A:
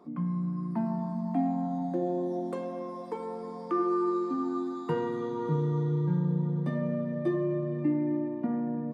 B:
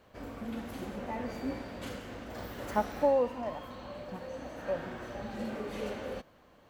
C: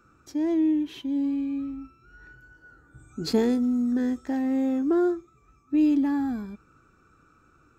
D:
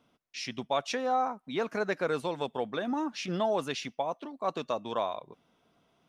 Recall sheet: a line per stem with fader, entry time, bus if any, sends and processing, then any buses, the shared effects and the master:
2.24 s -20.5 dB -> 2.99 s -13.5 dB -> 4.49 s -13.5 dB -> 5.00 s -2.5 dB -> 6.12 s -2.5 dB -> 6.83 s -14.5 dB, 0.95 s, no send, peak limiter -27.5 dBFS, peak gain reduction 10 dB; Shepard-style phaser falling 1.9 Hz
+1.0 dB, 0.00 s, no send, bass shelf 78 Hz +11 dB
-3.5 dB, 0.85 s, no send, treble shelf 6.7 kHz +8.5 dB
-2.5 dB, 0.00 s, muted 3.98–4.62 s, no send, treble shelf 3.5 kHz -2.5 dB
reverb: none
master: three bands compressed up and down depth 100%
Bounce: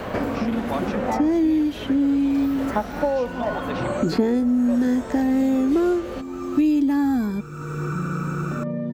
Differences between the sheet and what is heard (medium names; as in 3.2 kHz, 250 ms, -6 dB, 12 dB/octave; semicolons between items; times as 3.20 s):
stem A: entry 0.95 s -> 1.85 s; stem C -3.5 dB -> +5.5 dB; stem D -2.5 dB -> -13.0 dB